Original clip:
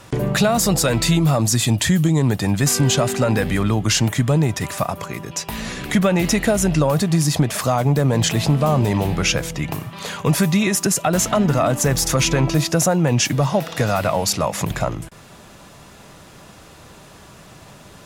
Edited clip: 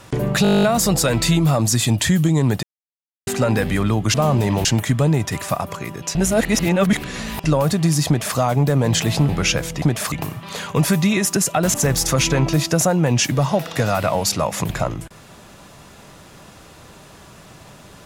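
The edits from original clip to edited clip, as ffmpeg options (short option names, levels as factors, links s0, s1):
-filter_complex "[0:a]asplit=21[s0][s1][s2][s3][s4][s5][s6][s7][s8][s9][s10][s11][s12][s13][s14][s15][s16][s17][s18][s19][s20];[s0]atrim=end=0.452[s21];[s1]atrim=start=0.428:end=0.452[s22];[s2]atrim=start=0.428:end=0.452[s23];[s3]atrim=start=0.428:end=0.452[s24];[s4]atrim=start=0.428:end=0.452[s25];[s5]atrim=start=0.428:end=0.452[s26];[s6]atrim=start=0.428:end=0.452[s27];[s7]atrim=start=0.428:end=0.452[s28];[s8]atrim=start=0.428:end=0.452[s29];[s9]atrim=start=0.428:end=0.452[s30];[s10]atrim=start=0.428:end=2.43,asetpts=PTS-STARTPTS,afade=t=out:st=1.998:d=0.004:c=hsin[s31];[s11]atrim=start=2.43:end=3.07,asetpts=PTS-STARTPTS,volume=0[s32];[s12]atrim=start=3.07:end=3.942,asetpts=PTS-STARTPTS,afade=t=in:d=0.004:c=hsin[s33];[s13]atrim=start=8.578:end=9.092[s34];[s14]atrim=start=3.938:end=5.442[s35];[s15]atrim=start=5.438:end=6.732,asetpts=PTS-STARTPTS,areverse[s36];[s16]atrim=start=6.728:end=8.582[s37];[s17]atrim=start=9.088:end=9.622[s38];[s18]atrim=start=7.358:end=7.662[s39];[s19]atrim=start=9.618:end=11.242[s40];[s20]atrim=start=11.748[s41];[s21][s22]acrossfade=d=0.004:c1=hsin:c2=hsin[s42];[s42][s23]acrossfade=d=0.004:c1=hsin:c2=hsin[s43];[s43][s24]acrossfade=d=0.004:c1=hsin:c2=hsin[s44];[s44][s25]acrossfade=d=0.004:c1=hsin:c2=hsin[s45];[s45][s26]acrossfade=d=0.004:c1=hsin:c2=hsin[s46];[s46][s27]acrossfade=d=0.004:c1=hsin:c2=hsin[s47];[s47][s28]acrossfade=d=0.004:c1=hsin:c2=hsin[s48];[s48][s29]acrossfade=d=0.004:c1=hsin:c2=hsin[s49];[s49][s30]acrossfade=d=0.004:c1=hsin:c2=hsin[s50];[s31][s32][s33]concat=n=3:v=0:a=1[s51];[s50][s51]acrossfade=d=0.004:c1=hsin:c2=hsin[s52];[s52][s34]acrossfade=d=0.004:c1=hsin:c2=hsin[s53];[s53][s35]acrossfade=d=0.004:c1=hsin:c2=hsin[s54];[s54][s36]acrossfade=d=0.004:c1=hsin:c2=hsin[s55];[s55][s37]acrossfade=d=0.004:c1=hsin:c2=hsin[s56];[s56][s38]acrossfade=d=0.004:c1=hsin:c2=hsin[s57];[s57][s39]acrossfade=d=0.004:c1=hsin:c2=hsin[s58];[s58][s40]acrossfade=d=0.004:c1=hsin:c2=hsin[s59];[s59][s41]acrossfade=d=0.004:c1=hsin:c2=hsin"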